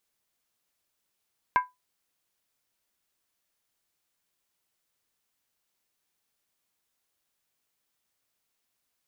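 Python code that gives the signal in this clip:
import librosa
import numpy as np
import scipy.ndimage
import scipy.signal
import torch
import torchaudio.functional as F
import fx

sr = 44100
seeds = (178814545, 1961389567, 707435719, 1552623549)

y = fx.strike_skin(sr, length_s=0.63, level_db=-15.0, hz=999.0, decay_s=0.19, tilt_db=7.5, modes=5)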